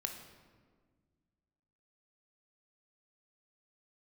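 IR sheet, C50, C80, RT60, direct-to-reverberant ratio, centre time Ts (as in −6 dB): 6.5 dB, 8.0 dB, 1.6 s, 4.0 dB, 31 ms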